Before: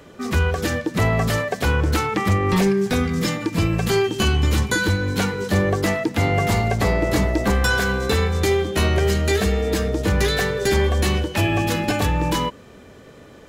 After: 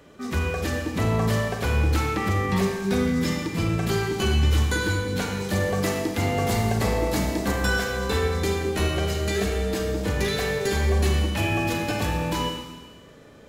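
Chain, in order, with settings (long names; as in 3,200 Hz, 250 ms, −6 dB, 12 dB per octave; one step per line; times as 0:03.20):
0:05.31–0:07.51: high-shelf EQ 4,700 Hz +6 dB
four-comb reverb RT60 1.4 s, combs from 28 ms, DRR 2 dB
level −6.5 dB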